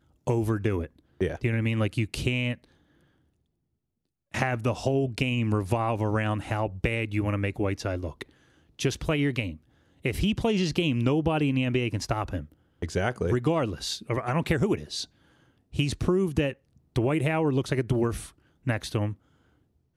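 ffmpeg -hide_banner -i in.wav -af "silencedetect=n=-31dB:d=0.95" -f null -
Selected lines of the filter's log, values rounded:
silence_start: 2.54
silence_end: 4.34 | silence_duration: 1.80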